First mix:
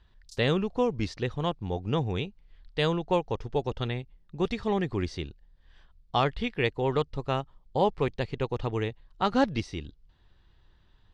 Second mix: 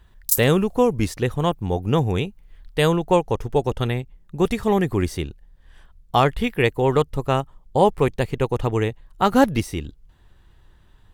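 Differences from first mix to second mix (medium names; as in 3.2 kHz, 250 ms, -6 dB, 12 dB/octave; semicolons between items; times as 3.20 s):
background +10.5 dB; master: remove four-pole ladder low-pass 5.6 kHz, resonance 40%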